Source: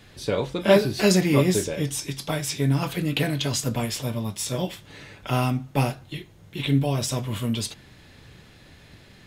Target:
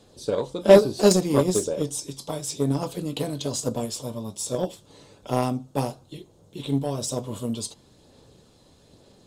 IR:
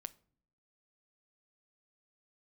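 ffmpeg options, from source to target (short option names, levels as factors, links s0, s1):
-af "equalizer=f=250:t=o:w=1:g=5,equalizer=f=500:t=o:w=1:g=11,equalizer=f=1000:t=o:w=1:g=6,equalizer=f=2000:t=o:w=1:g=-11,equalizer=f=4000:t=o:w=1:g=5,equalizer=f=8000:t=o:w=1:g=11,aphaser=in_gain=1:out_gain=1:delay=1:decay=0.24:speed=1.1:type=sinusoidal,aeval=exprs='1.88*(cos(1*acos(clip(val(0)/1.88,-1,1)))-cos(1*PI/2))+0.119*(cos(7*acos(clip(val(0)/1.88,-1,1)))-cos(7*PI/2))':c=same,volume=0.501"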